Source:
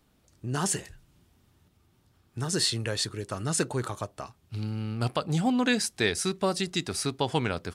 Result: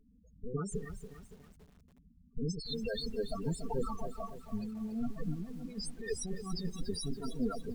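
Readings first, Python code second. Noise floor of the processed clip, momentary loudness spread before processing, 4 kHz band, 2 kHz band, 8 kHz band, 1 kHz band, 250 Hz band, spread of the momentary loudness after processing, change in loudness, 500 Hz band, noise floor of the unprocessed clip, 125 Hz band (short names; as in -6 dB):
-64 dBFS, 11 LU, -13.0 dB, -18.0 dB, -16.0 dB, -12.5 dB, -7.5 dB, 12 LU, -10.5 dB, -7.5 dB, -66 dBFS, -9.5 dB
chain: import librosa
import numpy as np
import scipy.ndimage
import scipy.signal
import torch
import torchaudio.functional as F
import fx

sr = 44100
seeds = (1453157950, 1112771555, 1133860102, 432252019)

y = fx.lower_of_two(x, sr, delay_ms=4.4)
y = fx.low_shelf(y, sr, hz=180.0, db=5.0)
y = fx.over_compress(y, sr, threshold_db=-32.0, ratio=-0.5)
y = fx.spec_topn(y, sr, count=8)
y = fx.echo_crushed(y, sr, ms=284, feedback_pct=55, bits=9, wet_db=-11.0)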